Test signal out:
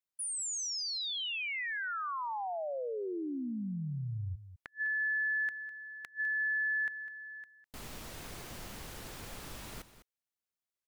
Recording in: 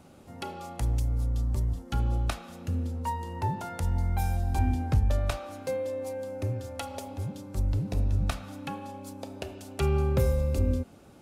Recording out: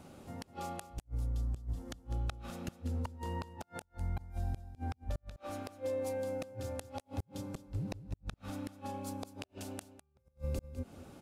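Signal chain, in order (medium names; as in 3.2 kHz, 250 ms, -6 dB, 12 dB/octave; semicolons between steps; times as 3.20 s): compression 12:1, threshold -31 dBFS; inverted gate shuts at -27 dBFS, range -42 dB; on a send: delay 203 ms -13.5 dB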